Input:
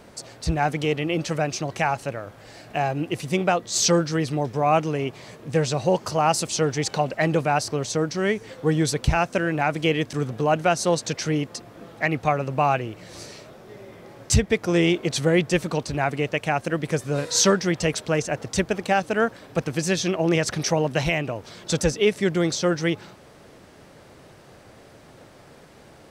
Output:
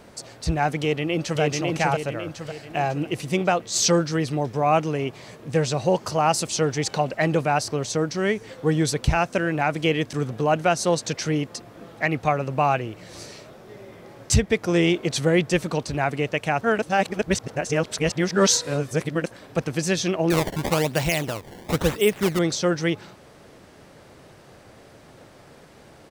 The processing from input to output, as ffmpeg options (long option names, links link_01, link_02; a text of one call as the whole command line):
ffmpeg -i in.wav -filter_complex "[0:a]asplit=2[link_01][link_02];[link_02]afade=type=in:start_time=0.8:duration=0.01,afade=type=out:start_time=1.41:duration=0.01,aecho=0:1:550|1100|1650|2200|2750|3300:0.794328|0.357448|0.160851|0.0723832|0.0325724|0.0146576[link_03];[link_01][link_03]amix=inputs=2:normalize=0,asettb=1/sr,asplit=3[link_04][link_05][link_06];[link_04]atrim=end=20.304[link_07];[link_05]atrim=start=20.3:end=22.39,asetpts=PTS-STARTPTS,afade=type=in:duration=0.004:curve=qsin,afade=type=out:start_time=2.086:duration=0.004:curve=qsin,acrusher=samples=20:mix=1:aa=0.000001:lfo=1:lforange=32:lforate=1[link_08];[link_06]atrim=start=22.386[link_09];[link_07][link_08]acrossfade=duration=0.004:curve1=hsin:curve2=qsin[link_10];[link_10][link_09]acrossfade=duration=0.004:curve1=qsin:curve2=hsin,asplit=3[link_11][link_12][link_13];[link_11]atrim=end=16.612[link_14];[link_12]atrim=start=16.608:end=19.312,asetpts=PTS-STARTPTS,areverse[link_15];[link_13]atrim=start=19.308[link_16];[link_14][link_15]acrossfade=duration=0.004:curve1=hsin:curve2=hsin[link_17];[link_17][link_16]acrossfade=duration=0.004:curve1=hsin:curve2=hsin" out.wav